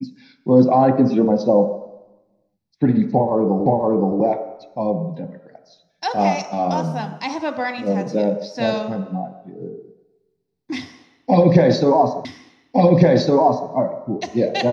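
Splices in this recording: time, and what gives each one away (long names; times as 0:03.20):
0:03.66: the same again, the last 0.52 s
0:12.25: the same again, the last 1.46 s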